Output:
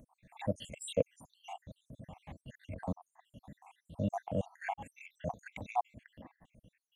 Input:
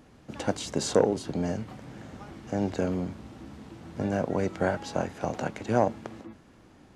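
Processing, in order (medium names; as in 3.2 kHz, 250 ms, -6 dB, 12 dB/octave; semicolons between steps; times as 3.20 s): random holes in the spectrogram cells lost 77%; static phaser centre 1.4 kHz, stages 6; transient shaper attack -4 dB, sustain -8 dB; trim +3 dB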